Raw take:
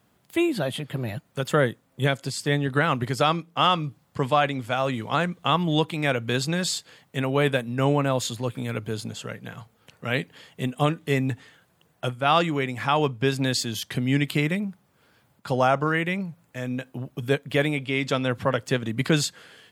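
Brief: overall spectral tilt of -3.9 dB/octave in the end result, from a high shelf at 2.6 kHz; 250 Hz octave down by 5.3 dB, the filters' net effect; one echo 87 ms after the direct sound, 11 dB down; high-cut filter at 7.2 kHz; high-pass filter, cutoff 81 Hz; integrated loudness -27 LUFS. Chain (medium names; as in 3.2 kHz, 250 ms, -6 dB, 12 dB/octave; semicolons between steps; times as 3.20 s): high-pass 81 Hz; low-pass 7.2 kHz; peaking EQ 250 Hz -7.5 dB; treble shelf 2.6 kHz -3.5 dB; delay 87 ms -11 dB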